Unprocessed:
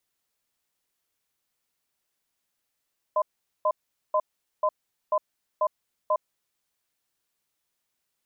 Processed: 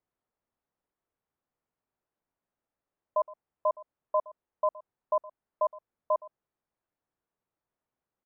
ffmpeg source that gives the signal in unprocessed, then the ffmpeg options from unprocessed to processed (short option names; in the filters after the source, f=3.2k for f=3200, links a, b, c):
-f lavfi -i "aevalsrc='0.075*(sin(2*PI*617*t)+sin(2*PI*1020*t))*clip(min(mod(t,0.49),0.06-mod(t,0.49))/0.005,0,1)':d=3.2:s=44100"
-af "lowpass=1.1k,aecho=1:1:117:0.1"